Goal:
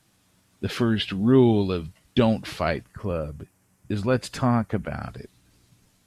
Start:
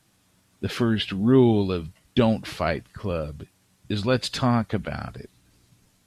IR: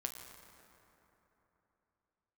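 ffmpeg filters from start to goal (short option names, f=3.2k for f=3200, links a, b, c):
-filter_complex "[0:a]asettb=1/sr,asplit=3[a][b][c];[a]atrim=end=2.844[d];[b]atrim=start=2.84:end=5.03,asetpts=PTS-STARTPTS,afade=t=in:d=0.004:c=qsin,afade=t=out:st=2.186:d=0.004:c=qsin,equalizer=f=3.8k:t=o:w=0.89:g=-11.5[e];[c]atrim=start=5.026[f];[d][e]acrossfade=d=0.004:c1=hsin:c2=qsin[g];[g][f]acrossfade=d=0.004:c1=qsin:c2=hsin"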